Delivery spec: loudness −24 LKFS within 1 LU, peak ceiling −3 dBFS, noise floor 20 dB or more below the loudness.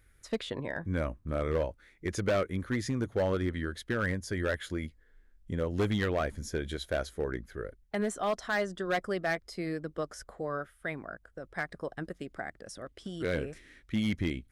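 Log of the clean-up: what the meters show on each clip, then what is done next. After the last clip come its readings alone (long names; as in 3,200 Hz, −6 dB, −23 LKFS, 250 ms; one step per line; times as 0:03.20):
share of clipped samples 1.1%; peaks flattened at −23.0 dBFS; integrated loudness −34.0 LKFS; sample peak −23.0 dBFS; target loudness −24.0 LKFS
→ clipped peaks rebuilt −23 dBFS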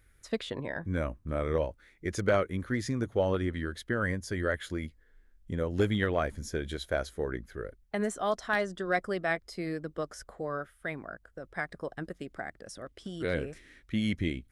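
share of clipped samples 0.0%; integrated loudness −33.0 LKFS; sample peak −14.0 dBFS; target loudness −24.0 LKFS
→ level +9 dB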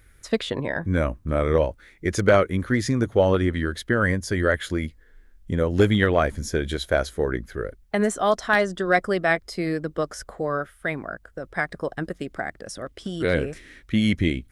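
integrated loudness −24.0 LKFS; sample peak −5.0 dBFS; background noise floor −55 dBFS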